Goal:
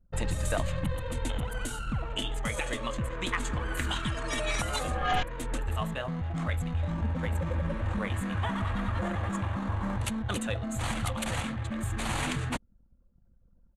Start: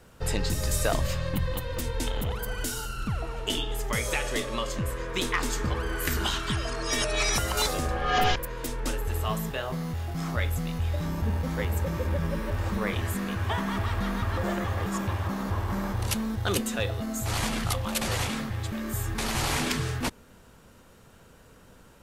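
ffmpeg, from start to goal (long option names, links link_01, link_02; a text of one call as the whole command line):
ffmpeg -i in.wav -filter_complex "[0:a]lowpass=frequency=10000:width=0.5412,lowpass=frequency=10000:width=1.3066,equalizer=frequency=5200:width_type=o:width=0.47:gain=-13.5,anlmdn=0.1,atempo=1.6,equalizer=frequency=400:width_type=o:width=0.23:gain=-11.5,asplit=2[link_01][link_02];[link_02]alimiter=level_in=0.5dB:limit=-24dB:level=0:latency=1:release=441,volume=-0.5dB,volume=-2.5dB[link_03];[link_01][link_03]amix=inputs=2:normalize=0,volume=-4.5dB" out.wav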